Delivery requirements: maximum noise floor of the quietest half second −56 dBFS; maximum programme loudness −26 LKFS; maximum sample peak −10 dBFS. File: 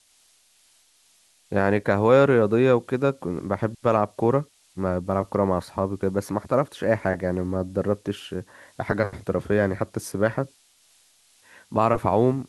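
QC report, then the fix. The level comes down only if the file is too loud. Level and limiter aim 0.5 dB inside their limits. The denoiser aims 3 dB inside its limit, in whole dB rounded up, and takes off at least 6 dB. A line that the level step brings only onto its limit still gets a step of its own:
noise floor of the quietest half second −61 dBFS: in spec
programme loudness −23.5 LKFS: out of spec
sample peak −6.0 dBFS: out of spec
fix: level −3 dB
brickwall limiter −10.5 dBFS

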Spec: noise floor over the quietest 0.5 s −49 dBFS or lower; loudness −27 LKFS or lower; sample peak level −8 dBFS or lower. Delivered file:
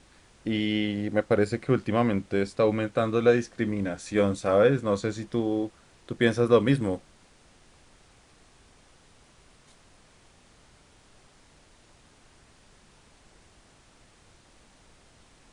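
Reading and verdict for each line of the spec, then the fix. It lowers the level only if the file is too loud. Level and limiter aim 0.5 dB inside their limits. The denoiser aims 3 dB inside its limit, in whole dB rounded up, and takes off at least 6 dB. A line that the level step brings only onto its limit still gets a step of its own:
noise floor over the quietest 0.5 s −58 dBFS: in spec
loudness −26.0 LKFS: out of spec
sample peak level −7.0 dBFS: out of spec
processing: level −1.5 dB

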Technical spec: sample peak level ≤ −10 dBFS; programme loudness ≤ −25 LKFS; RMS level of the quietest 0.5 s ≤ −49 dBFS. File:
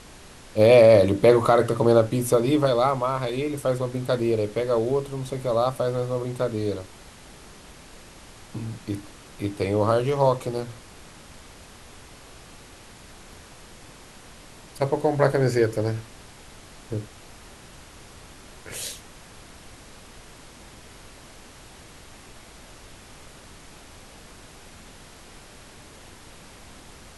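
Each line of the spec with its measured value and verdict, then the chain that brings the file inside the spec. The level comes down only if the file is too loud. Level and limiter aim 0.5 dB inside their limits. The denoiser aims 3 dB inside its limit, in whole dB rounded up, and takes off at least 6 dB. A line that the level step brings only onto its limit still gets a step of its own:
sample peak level −5.0 dBFS: out of spec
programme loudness −22.5 LKFS: out of spec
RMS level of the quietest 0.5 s −46 dBFS: out of spec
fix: broadband denoise 6 dB, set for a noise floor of −46 dBFS
level −3 dB
brickwall limiter −10.5 dBFS

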